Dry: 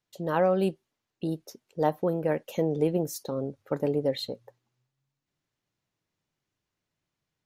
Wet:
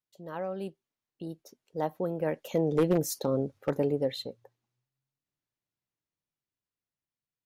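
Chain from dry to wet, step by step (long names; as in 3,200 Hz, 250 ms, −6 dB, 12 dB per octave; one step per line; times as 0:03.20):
source passing by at 0:03.21, 5 m/s, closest 2.5 metres
wave folding −19.5 dBFS
level +3.5 dB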